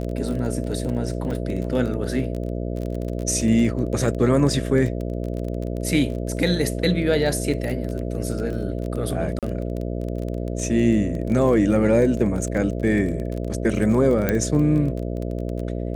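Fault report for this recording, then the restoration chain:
buzz 60 Hz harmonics 11 -27 dBFS
crackle 23 per s -27 dBFS
1.31–1.32 s: dropout 5.3 ms
9.39–9.43 s: dropout 37 ms
14.29 s: pop -7 dBFS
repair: de-click; de-hum 60 Hz, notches 11; interpolate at 1.31 s, 5.3 ms; interpolate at 9.39 s, 37 ms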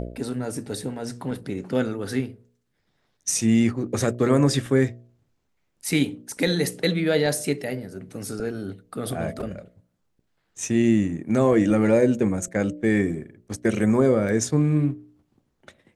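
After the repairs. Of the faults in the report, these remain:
14.29 s: pop

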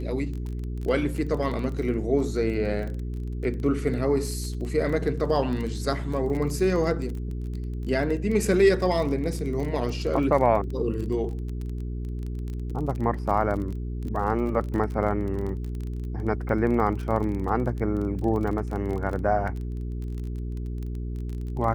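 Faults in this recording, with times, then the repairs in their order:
crackle 21 per s -31 dBFS
hum 60 Hz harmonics 7 -31 dBFS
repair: de-click; de-hum 60 Hz, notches 7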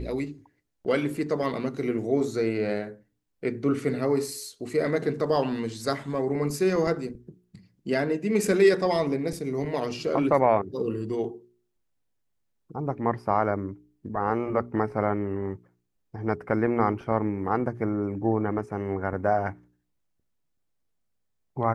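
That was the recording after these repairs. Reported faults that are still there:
nothing left

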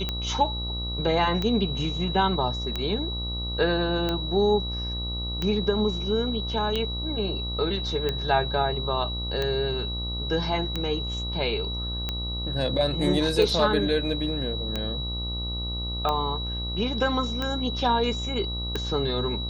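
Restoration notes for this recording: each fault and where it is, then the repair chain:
buzz 60 Hz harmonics 22 -32 dBFS
tick 45 rpm -14 dBFS
whine 3.9 kHz -32 dBFS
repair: de-click; band-stop 3.9 kHz, Q 30; de-hum 60 Hz, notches 22

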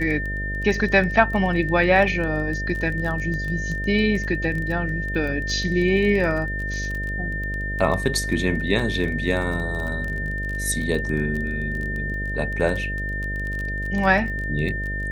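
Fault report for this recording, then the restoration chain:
buzz 50 Hz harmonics 13 -29 dBFS
crackle 21 per s -27 dBFS
whine 1.8 kHz -28 dBFS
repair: de-click; de-hum 50 Hz, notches 13; band-stop 1.8 kHz, Q 30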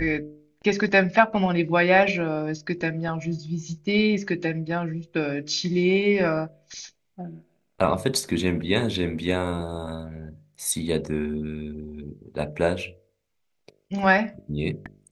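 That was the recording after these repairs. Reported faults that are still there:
nothing left

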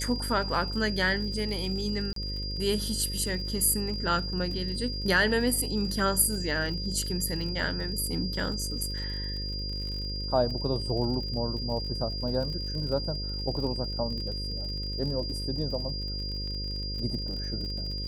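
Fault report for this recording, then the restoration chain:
buzz 50 Hz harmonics 11 -35 dBFS
crackle 49 per s -37 dBFS
whine 4.8 kHz -35 dBFS
2.13–2.16 s: dropout 33 ms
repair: de-click; de-hum 50 Hz, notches 11; band-stop 4.8 kHz, Q 30; interpolate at 2.13 s, 33 ms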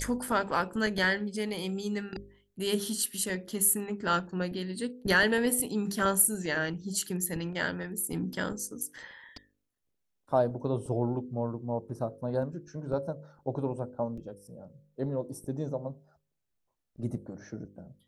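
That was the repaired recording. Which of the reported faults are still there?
nothing left

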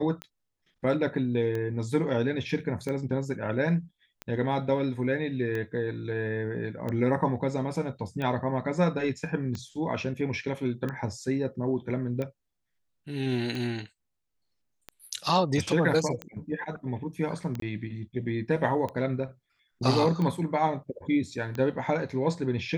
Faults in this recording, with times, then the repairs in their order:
tick 45 rpm -21 dBFS
17.60–17.62 s: dropout 23 ms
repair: de-click; interpolate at 17.60 s, 23 ms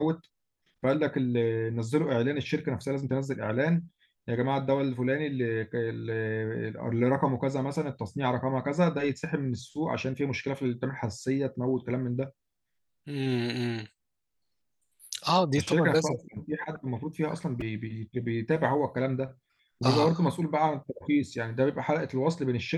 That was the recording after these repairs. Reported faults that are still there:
nothing left

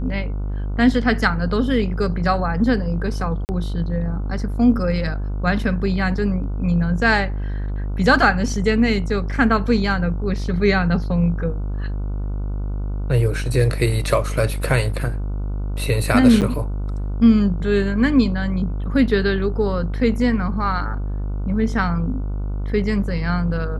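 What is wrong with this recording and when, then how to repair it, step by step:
buzz 50 Hz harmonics 30 -24 dBFS
3.45–3.49 s: dropout 39 ms
16.41–16.42 s: dropout 8 ms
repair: de-hum 50 Hz, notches 30; interpolate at 3.45 s, 39 ms; interpolate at 16.41 s, 8 ms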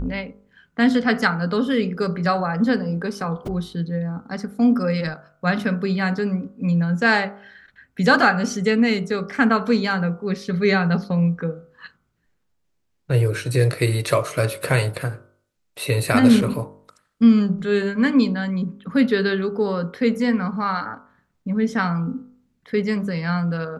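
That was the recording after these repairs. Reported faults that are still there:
nothing left

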